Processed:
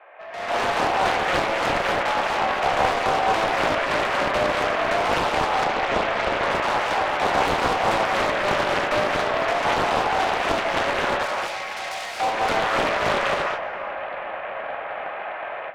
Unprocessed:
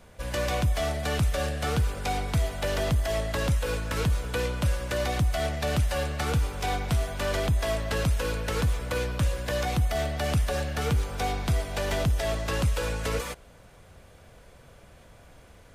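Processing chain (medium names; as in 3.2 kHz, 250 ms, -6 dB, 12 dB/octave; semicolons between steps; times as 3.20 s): mistuned SSB +110 Hz 400–2400 Hz; saturation -35.5 dBFS, distortion -8 dB; 11.23–12.20 s: differentiator; peak limiter -44.5 dBFS, peak gain reduction 9 dB; filtered feedback delay 367 ms, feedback 77%, low-pass 1.7 kHz, level -13 dB; gated-style reverb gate 270 ms rising, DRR -1.5 dB; level rider gain up to 14 dB; 5.64–6.51 s: distance through air 120 m; loudspeaker Doppler distortion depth 0.97 ms; trim +8.5 dB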